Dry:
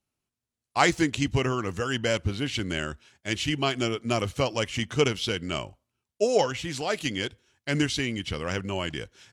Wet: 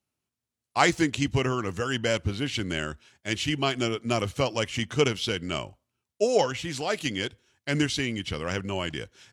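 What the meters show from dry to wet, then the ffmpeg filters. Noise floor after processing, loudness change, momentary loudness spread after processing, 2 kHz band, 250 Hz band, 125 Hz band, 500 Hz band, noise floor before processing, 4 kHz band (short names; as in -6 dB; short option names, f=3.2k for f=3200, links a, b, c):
under -85 dBFS, 0.0 dB, 10 LU, 0.0 dB, 0.0 dB, 0.0 dB, 0.0 dB, under -85 dBFS, 0.0 dB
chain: -af "highpass=57"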